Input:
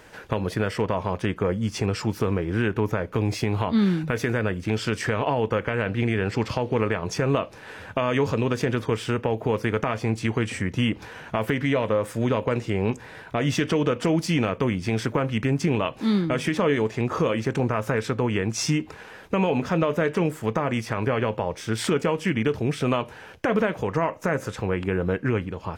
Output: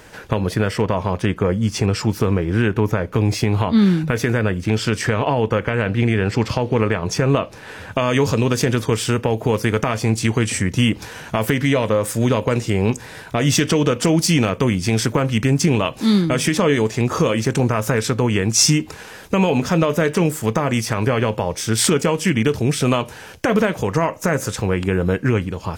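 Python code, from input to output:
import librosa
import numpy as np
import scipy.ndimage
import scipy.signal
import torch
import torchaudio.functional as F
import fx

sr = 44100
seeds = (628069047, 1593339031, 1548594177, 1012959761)

y = fx.bass_treble(x, sr, bass_db=3, treble_db=fx.steps((0.0, 4.0), (7.91, 12.0)))
y = y * librosa.db_to_amplitude(4.5)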